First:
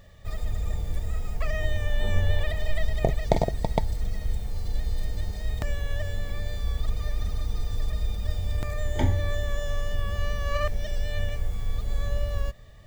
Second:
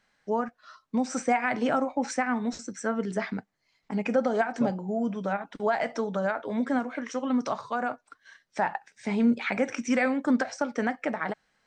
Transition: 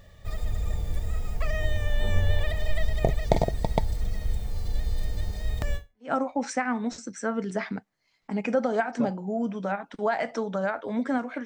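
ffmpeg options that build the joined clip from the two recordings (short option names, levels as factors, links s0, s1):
-filter_complex "[0:a]apad=whole_dur=11.45,atrim=end=11.45,atrim=end=6.12,asetpts=PTS-STARTPTS[s0];[1:a]atrim=start=1.37:end=7.06,asetpts=PTS-STARTPTS[s1];[s0][s1]acrossfade=d=0.36:c1=exp:c2=exp"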